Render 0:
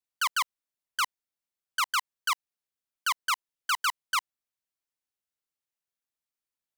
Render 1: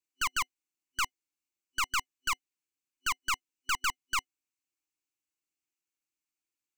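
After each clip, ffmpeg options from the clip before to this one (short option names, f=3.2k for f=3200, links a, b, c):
-af "aeval=exprs='(tanh(20*val(0)+0.7)-tanh(0.7))/20':c=same,superequalizer=6b=3.16:8b=0.251:12b=2.24:14b=1.41:15b=2.24"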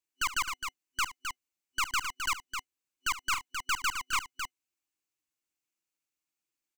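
-af "aecho=1:1:69|262:0.178|0.473"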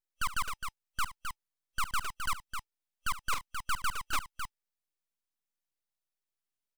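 -af "aeval=exprs='abs(val(0))':c=same"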